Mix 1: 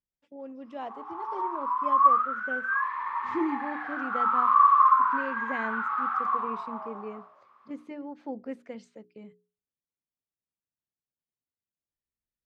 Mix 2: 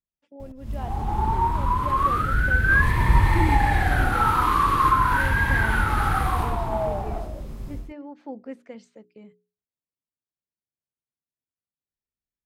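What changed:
background: remove ladder band-pass 1200 Hz, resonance 80%; master: add high shelf 7100 Hz +4 dB

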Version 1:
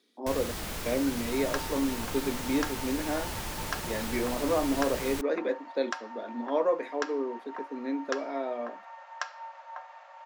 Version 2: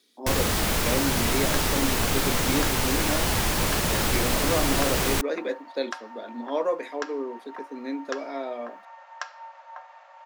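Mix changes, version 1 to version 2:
speech: add high shelf 3200 Hz +11 dB; first sound +12.0 dB

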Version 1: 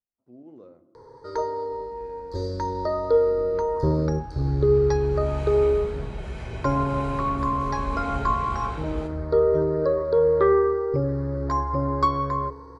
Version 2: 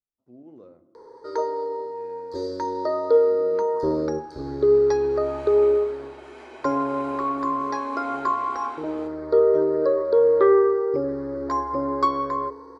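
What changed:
first sound: add resonant low shelf 200 Hz -13.5 dB, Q 1.5; second sound: add rippled Chebyshev high-pass 240 Hz, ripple 6 dB

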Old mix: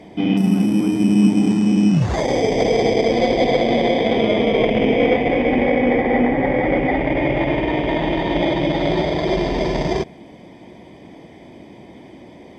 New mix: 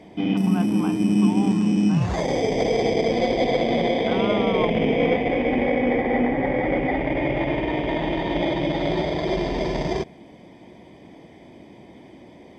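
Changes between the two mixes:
speech +8.0 dB; background -4.5 dB

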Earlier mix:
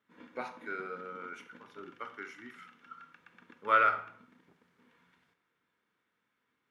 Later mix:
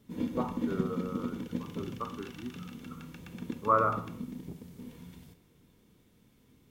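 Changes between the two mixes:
speech: add ladder low-pass 1200 Hz, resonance 80%; master: remove band-pass 1500 Hz, Q 2.3

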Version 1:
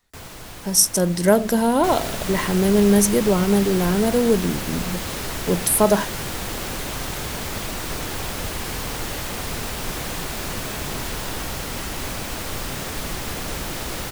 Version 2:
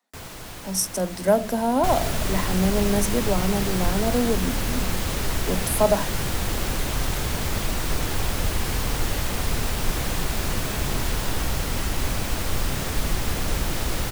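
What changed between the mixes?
speech: add rippled Chebyshev high-pass 180 Hz, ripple 9 dB; second sound: add low shelf 110 Hz +9.5 dB

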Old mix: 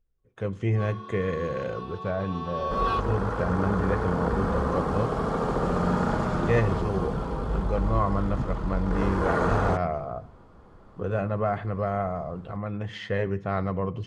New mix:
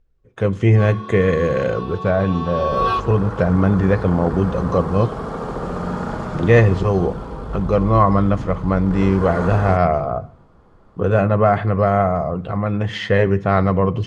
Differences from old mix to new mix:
speech +11.5 dB; first sound +7.5 dB

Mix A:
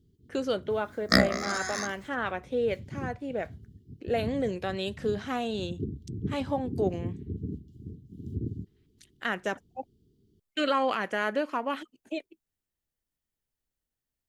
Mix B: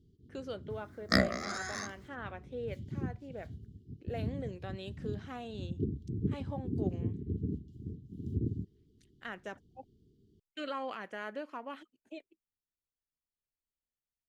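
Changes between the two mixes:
speech -12.0 dB; second sound -5.0 dB; master: add high shelf 7400 Hz -5.5 dB

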